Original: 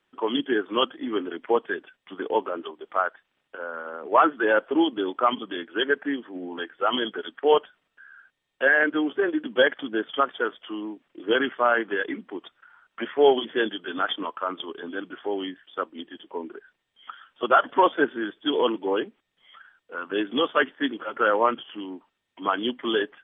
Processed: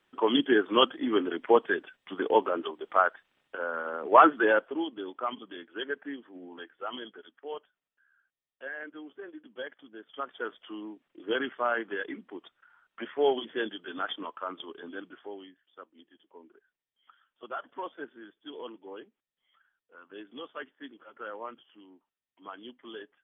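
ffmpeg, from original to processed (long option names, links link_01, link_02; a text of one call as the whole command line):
ffmpeg -i in.wav -af "volume=13.5dB,afade=type=out:start_time=4.33:duration=0.42:silence=0.251189,afade=type=out:start_time=6.52:duration=0.96:silence=0.354813,afade=type=in:start_time=10.05:duration=0.5:silence=0.237137,afade=type=out:start_time=14.94:duration=0.55:silence=0.266073" out.wav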